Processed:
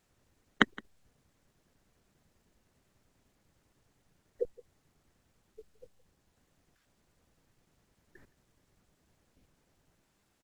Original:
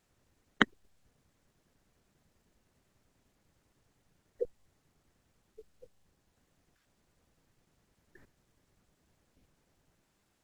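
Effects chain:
single-tap delay 167 ms −22 dB
level +1 dB

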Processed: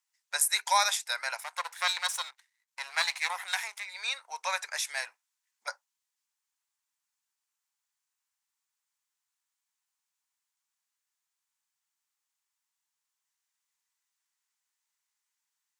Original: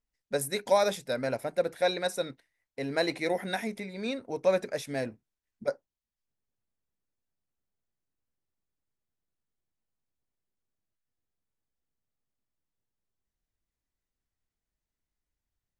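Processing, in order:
0:01.40–0:03.86: gain on one half-wave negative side −12 dB
Chebyshev high-pass filter 900 Hz, order 4
parametric band 7,200 Hz +7 dB 0.98 octaves
level +6.5 dB

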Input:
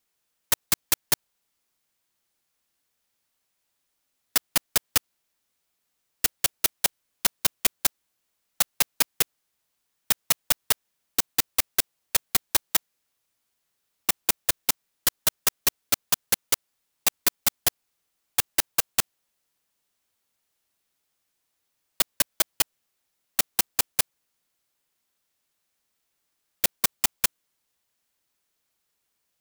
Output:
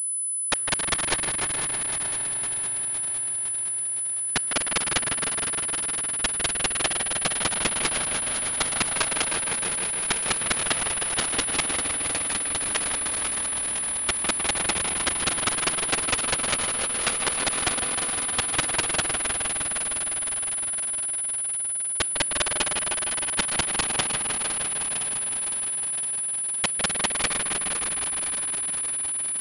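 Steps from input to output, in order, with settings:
feedback delay that plays each chunk backwards 255 ms, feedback 81%, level −9 dB
0:11.74–0:12.76: downward compressor, threshold −25 dBFS, peak gain reduction 9 dB
delay with a low-pass on its return 154 ms, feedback 80%, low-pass 3,600 Hz, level −3 dB
on a send at −19 dB: convolution reverb RT60 3.5 s, pre-delay 6 ms
on the sum: regular buffer underruns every 0.35 s, samples 128, zero, from 0:00.47
switching amplifier with a slow clock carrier 10,000 Hz

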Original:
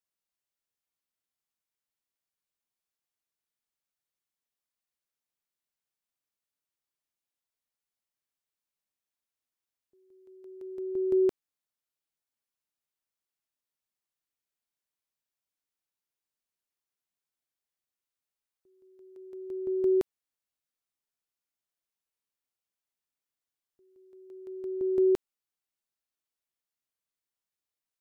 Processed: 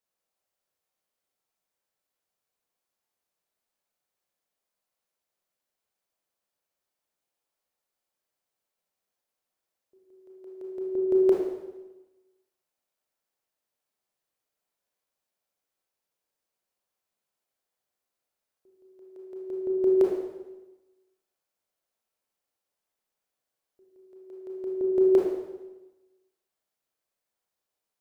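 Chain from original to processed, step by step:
parametric band 580 Hz +9 dB 1.3 octaves
convolution reverb RT60 1.1 s, pre-delay 23 ms, DRR −2 dB

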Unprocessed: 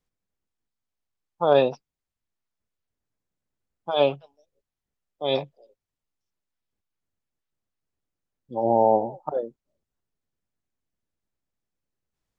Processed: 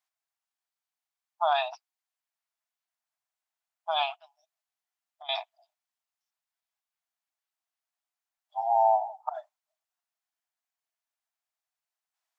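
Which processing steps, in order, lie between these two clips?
0:04.14–0:05.29: downward compressor 6 to 1, threshold −40 dBFS, peak gain reduction 16.5 dB
linear-phase brick-wall high-pass 620 Hz

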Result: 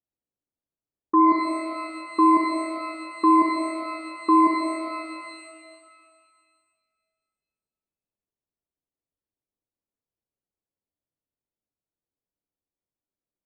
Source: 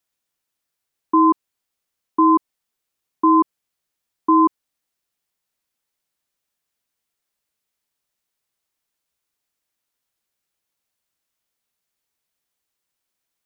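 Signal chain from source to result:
low-pass that shuts in the quiet parts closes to 480 Hz, open at −15.5 dBFS
reverb with rising layers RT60 2 s, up +12 semitones, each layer −8 dB, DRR 2 dB
level −4 dB

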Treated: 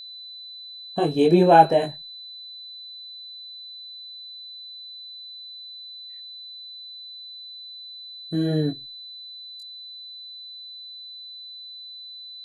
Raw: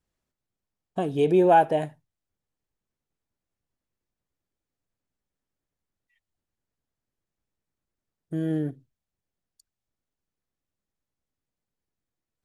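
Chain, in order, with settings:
noise reduction from a noise print of the clip's start 18 dB
multi-voice chorus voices 4, 0.64 Hz, delay 21 ms, depth 3.6 ms
steady tone 4,000 Hz −45 dBFS
level +7.5 dB

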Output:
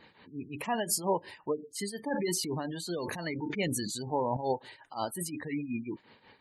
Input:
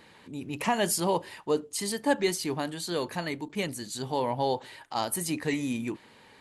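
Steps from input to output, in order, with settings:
gate on every frequency bin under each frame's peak −20 dB strong
shaped tremolo triangle 5.6 Hz, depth 80%
0:02.08–0:04.37: level that may fall only so fast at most 25 dB per second

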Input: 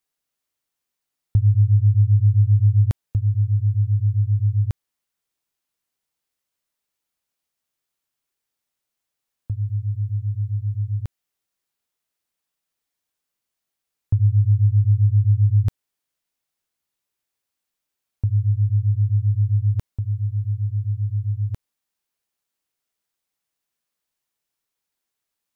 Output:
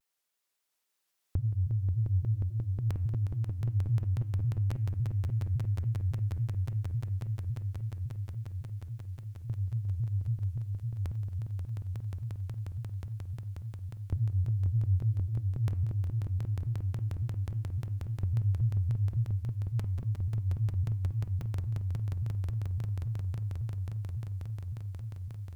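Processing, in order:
low-shelf EQ 280 Hz −10.5 dB
hum removal 247.4 Hz, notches 12
downward compressor, threshold −27 dBFS, peak gain reduction 6.5 dB
echo that builds up and dies away 179 ms, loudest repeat 8, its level −4 dB
pitch modulation by a square or saw wave saw down 3.6 Hz, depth 250 cents

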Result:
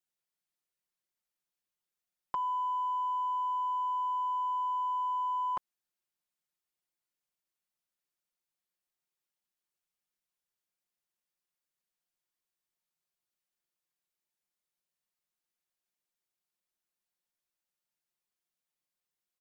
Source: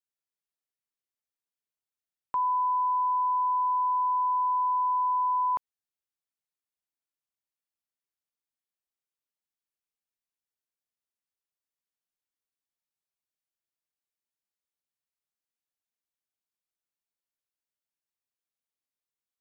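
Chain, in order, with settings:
comb filter 5.6 ms, depth 69%
in parallel at −11 dB: hard clipping −32.5 dBFS, distortion −16 dB
on the sum: level −2 dB

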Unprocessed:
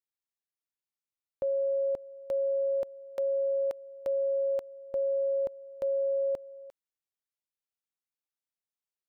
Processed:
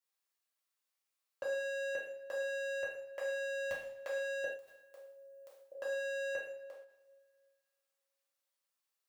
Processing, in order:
high-pass filter 440 Hz 12 dB per octave
0:04.44–0:05.72: first difference
hard clipping −35 dBFS, distortion −10 dB
coupled-rooms reverb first 0.66 s, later 2.2 s, from −25 dB, DRR −6 dB
every ending faded ahead of time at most 140 dB per second

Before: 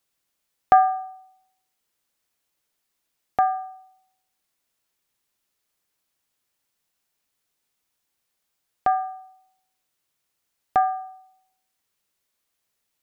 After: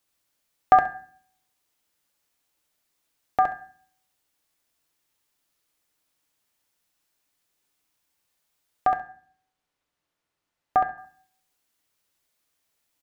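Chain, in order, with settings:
0:08.87–0:10.98: low-pass filter 2,200 Hz 6 dB per octave
repeating echo 67 ms, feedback 17%, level −4.5 dB
feedback delay network reverb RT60 0.46 s, low-frequency decay 1.55×, high-frequency decay 0.75×, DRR 9.5 dB

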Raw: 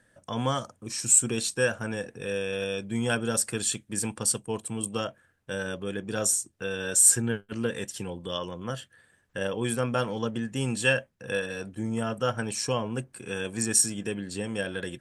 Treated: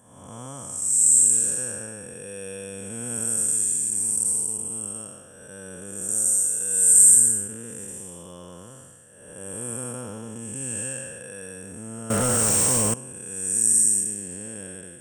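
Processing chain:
spectrum smeared in time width 415 ms
high shelf with overshoot 6,000 Hz +14 dB, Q 3
0:12.10–0:12.94: leveller curve on the samples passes 5
level −4.5 dB

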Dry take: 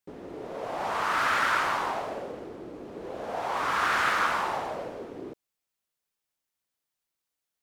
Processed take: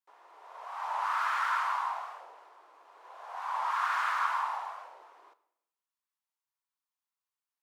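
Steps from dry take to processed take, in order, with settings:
four-pole ladder high-pass 860 Hz, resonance 60%
on a send at −12 dB: convolution reverb RT60 0.80 s, pre-delay 3 ms
on the sum: wow of a warped record 45 rpm, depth 160 cents

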